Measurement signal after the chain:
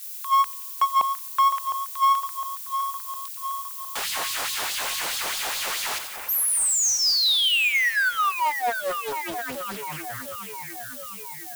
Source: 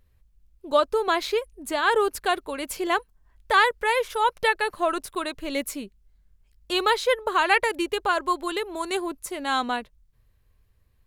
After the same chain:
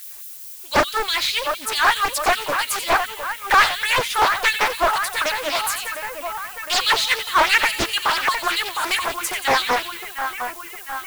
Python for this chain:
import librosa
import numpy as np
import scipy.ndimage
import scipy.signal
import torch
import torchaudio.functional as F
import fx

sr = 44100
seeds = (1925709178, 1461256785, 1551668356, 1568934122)

p1 = fx.filter_lfo_highpass(x, sr, shape='sine', hz=4.7, low_hz=610.0, high_hz=4000.0, q=1.4)
p2 = fx.notch(p1, sr, hz=5600.0, q=19.0)
p3 = p2 + fx.echo_split(p2, sr, split_hz=2500.0, low_ms=709, high_ms=89, feedback_pct=52, wet_db=-11.5, dry=0)
p4 = fx.power_curve(p3, sr, exponent=0.7)
p5 = fx.peak_eq(p4, sr, hz=470.0, db=-4.5, octaves=1.8)
p6 = np.clip(p5, -10.0 ** (-19.0 / 20.0), 10.0 ** (-19.0 / 20.0))
p7 = p5 + (p6 * 10.0 ** (-7.5 / 20.0))
p8 = fx.low_shelf(p7, sr, hz=150.0, db=8.5)
p9 = fx.dmg_noise_colour(p8, sr, seeds[0], colour='violet', level_db=-36.0)
y = fx.doppler_dist(p9, sr, depth_ms=0.85)